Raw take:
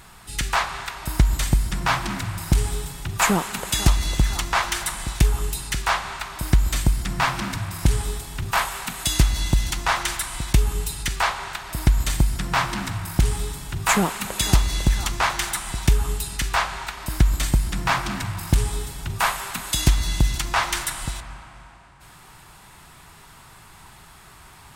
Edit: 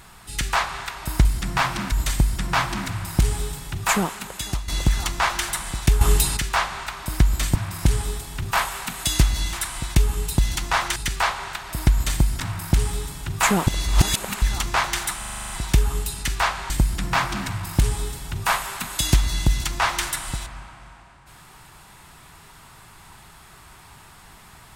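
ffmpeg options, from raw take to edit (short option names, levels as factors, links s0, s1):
-filter_complex "[0:a]asplit=22[s0][s1][s2][s3][s4][s5][s6][s7][s8][s9][s10][s11][s12][s13][s14][s15][s16][s17][s18][s19][s20][s21];[s0]atrim=end=1.252[s22];[s1]atrim=start=6.878:end=7.552[s23];[s2]atrim=start=1.248:end=4.01,asetpts=PTS-STARTPTS,afade=t=out:st=1.832:d=0.93:silence=0.211349[s24];[s3]atrim=start=4.01:end=5.342,asetpts=PTS-STARTPTS,afade=t=in:d=0.004:c=hsin:silence=0.211349[s25];[s4]atrim=start=5.338:end=5.702,asetpts=PTS-STARTPTS,volume=2.82[s26];[s5]atrim=start=5.698:end=6.882[s27];[s6]atrim=start=7.548:end=9.532[s28];[s7]atrim=start=10.108:end=10.962[s29];[s8]atrim=start=9.528:end=10.112[s30];[s9]atrim=start=10.958:end=12.402[s31];[s10]atrim=start=12.858:end=14.132[s32];[s11]atrim=start=14.128:end=14.882,asetpts=PTS-STARTPTS,areverse[s33];[s12]atrim=start=14.878:end=15.682[s34];[s13]atrim=start=15.638:end=15.682[s35];[s14]atrim=start=15.638:end=15.682[s36];[s15]atrim=start=15.638:end=15.682[s37];[s16]atrim=start=15.638:end=15.682[s38];[s17]atrim=start=15.638:end=15.682[s39];[s18]atrim=start=15.638:end=15.682[s40];[s19]atrim=start=15.638:end=15.682[s41];[s20]atrim=start=15.638:end=16.842[s42];[s21]atrim=start=17.438[s43];[s22][s23]acrossfade=d=0.004:c1=hsin:c2=hsin[s44];[s24][s25]concat=n=2:v=0:a=1[s45];[s44][s45]acrossfade=d=0.004:c1=hsin:c2=hsin[s46];[s46][s26]acrossfade=d=0.004:c1=hsin:c2=hsin[s47];[s47][s27]acrossfade=d=0.004:c1=hsin:c2=hsin[s48];[s48][s28]acrossfade=d=0.004:c1=hsin:c2=hsin[s49];[s49][s29]acrossfade=d=0.004:c1=hsin:c2=hsin[s50];[s50][s30]acrossfade=d=0.004:c1=hsin:c2=hsin[s51];[s51][s31]acrossfade=d=0.004:c1=hsin:c2=hsin[s52];[s52][s32]acrossfade=d=0.004:c1=hsin:c2=hsin[s53];[s53][s33]acrossfade=d=0.004:c1=hsin:c2=hsin[s54];[s54][s34]acrossfade=d=0.004:c1=hsin:c2=hsin[s55];[s55][s35]acrossfade=d=0.004:c1=hsin:c2=hsin[s56];[s56][s36]acrossfade=d=0.004:c1=hsin:c2=hsin[s57];[s57][s37]acrossfade=d=0.004:c1=hsin:c2=hsin[s58];[s58][s38]acrossfade=d=0.004:c1=hsin:c2=hsin[s59];[s59][s39]acrossfade=d=0.004:c1=hsin:c2=hsin[s60];[s60][s40]acrossfade=d=0.004:c1=hsin:c2=hsin[s61];[s61][s41]acrossfade=d=0.004:c1=hsin:c2=hsin[s62];[s62][s42]acrossfade=d=0.004:c1=hsin:c2=hsin[s63];[s63][s43]acrossfade=d=0.004:c1=hsin:c2=hsin"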